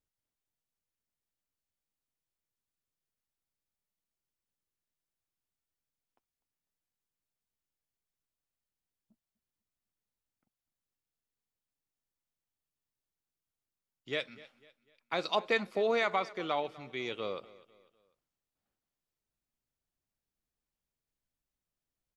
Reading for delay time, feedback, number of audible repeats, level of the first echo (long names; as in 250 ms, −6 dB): 249 ms, 40%, 2, −20.0 dB